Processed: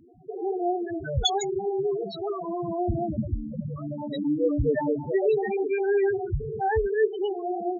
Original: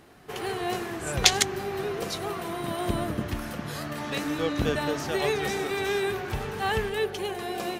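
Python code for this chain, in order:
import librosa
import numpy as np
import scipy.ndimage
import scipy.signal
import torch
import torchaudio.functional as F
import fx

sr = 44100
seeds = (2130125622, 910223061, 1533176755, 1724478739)

y = fx.peak_eq(x, sr, hz=1200.0, db=-8.5, octaves=0.45, at=(6.14, 6.7))
y = fx.spec_topn(y, sr, count=4)
y = F.gain(torch.from_numpy(y), 6.0).numpy()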